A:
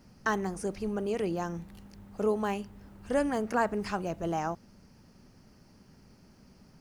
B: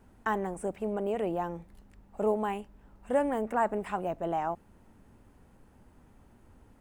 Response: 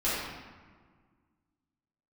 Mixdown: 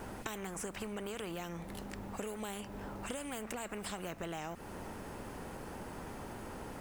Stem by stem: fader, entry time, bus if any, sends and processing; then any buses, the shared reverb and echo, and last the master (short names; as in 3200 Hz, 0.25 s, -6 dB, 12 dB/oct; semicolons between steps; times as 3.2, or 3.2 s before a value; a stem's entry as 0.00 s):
-0.5 dB, 0.00 s, no send, compressor, threshold -32 dBFS, peak gain reduction 10 dB
-4.5 dB, 0.00 s, no send, spectral compressor 10:1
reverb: off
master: compressor, threshold -38 dBFS, peak gain reduction 10.5 dB